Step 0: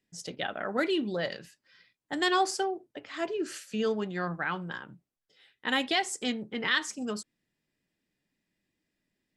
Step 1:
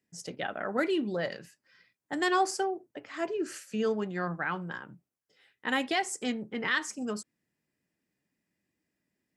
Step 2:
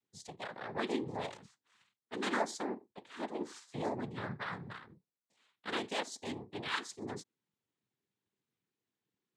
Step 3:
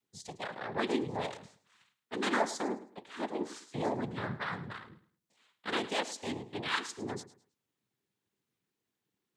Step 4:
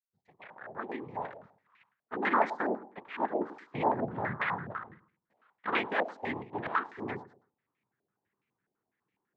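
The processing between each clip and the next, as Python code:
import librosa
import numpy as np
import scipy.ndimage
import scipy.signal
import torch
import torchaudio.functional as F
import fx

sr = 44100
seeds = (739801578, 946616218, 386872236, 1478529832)

y1 = scipy.signal.sosfilt(scipy.signal.butter(2, 66.0, 'highpass', fs=sr, output='sos'), x)
y1 = fx.peak_eq(y1, sr, hz=3600.0, db=-7.5, octaves=0.72)
y2 = fx.noise_vocoder(y1, sr, seeds[0], bands=6)
y2 = y2 * librosa.db_to_amplitude(-7.5)
y3 = fx.echo_feedback(y2, sr, ms=106, feedback_pct=27, wet_db=-16)
y3 = y3 * librosa.db_to_amplitude(3.5)
y4 = fx.fade_in_head(y3, sr, length_s=2.64)
y4 = fx.filter_held_lowpass(y4, sr, hz=12.0, low_hz=660.0, high_hz=2300.0)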